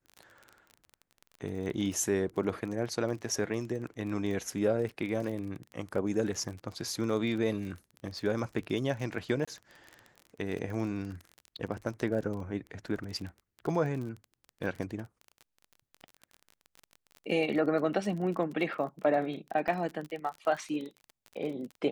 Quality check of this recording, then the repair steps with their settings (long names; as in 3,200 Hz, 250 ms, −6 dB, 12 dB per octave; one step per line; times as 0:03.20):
surface crackle 32 per second −37 dBFS
0:09.45–0:09.47: drop-out 25 ms
0:19.68: drop-out 3.8 ms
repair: click removal
repair the gap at 0:09.45, 25 ms
repair the gap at 0:19.68, 3.8 ms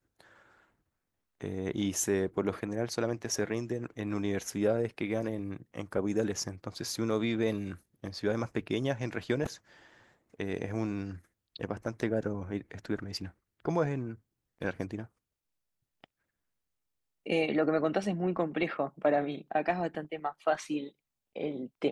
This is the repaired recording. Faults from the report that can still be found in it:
none of them is left